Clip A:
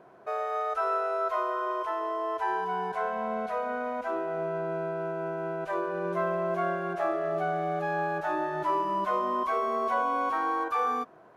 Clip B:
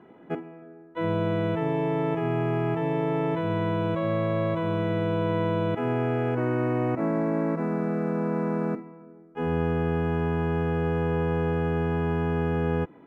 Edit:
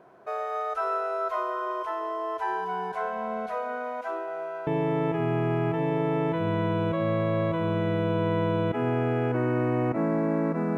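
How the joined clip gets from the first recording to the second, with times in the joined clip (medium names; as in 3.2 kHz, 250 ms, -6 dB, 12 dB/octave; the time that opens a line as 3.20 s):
clip A
3.54–4.67 s: high-pass 220 Hz -> 700 Hz
4.67 s: go over to clip B from 1.70 s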